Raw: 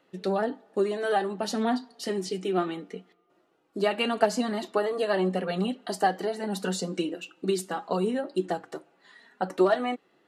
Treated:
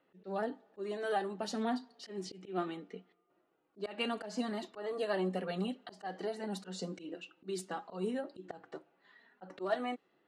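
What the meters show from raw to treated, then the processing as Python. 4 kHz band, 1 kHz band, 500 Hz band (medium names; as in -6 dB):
-9.5 dB, -11.0 dB, -11.0 dB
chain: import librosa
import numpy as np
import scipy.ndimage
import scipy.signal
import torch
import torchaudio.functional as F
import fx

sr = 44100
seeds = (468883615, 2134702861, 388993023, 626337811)

y = fx.auto_swell(x, sr, attack_ms=145.0)
y = fx.env_lowpass(y, sr, base_hz=3000.0, full_db=-23.5)
y = y * 10.0 ** (-8.0 / 20.0)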